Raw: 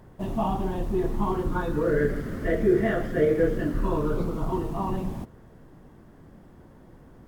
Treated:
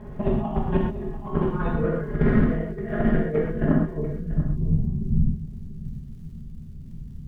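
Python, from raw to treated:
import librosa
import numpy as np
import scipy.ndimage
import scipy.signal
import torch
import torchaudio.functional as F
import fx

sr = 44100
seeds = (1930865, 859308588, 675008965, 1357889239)

p1 = scipy.signal.sosfilt(scipy.signal.butter(2, 3700.0, 'lowpass', fs=sr, output='sos'), x)
p2 = fx.low_shelf(p1, sr, hz=470.0, db=9.5)
p3 = p2 + 0.66 * np.pad(p2, (int(4.8 * sr / 1000.0), 0))[:len(p2)]
p4 = fx.over_compress(p3, sr, threshold_db=-21.0, ratio=-0.5)
p5 = fx.cheby_harmonics(p4, sr, harmonics=(3,), levels_db=(-16,), full_scale_db=-6.0)
p6 = fx.filter_sweep_lowpass(p5, sr, from_hz=2600.0, to_hz=120.0, start_s=3.58, end_s=4.31, q=1.4)
p7 = fx.dmg_crackle(p6, sr, seeds[0], per_s=140.0, level_db=-54.0)
p8 = p7 + fx.echo_single(p7, sr, ms=689, db=-15.0, dry=0)
y = fx.rev_gated(p8, sr, seeds[1], gate_ms=150, shape='flat', drr_db=-1.5)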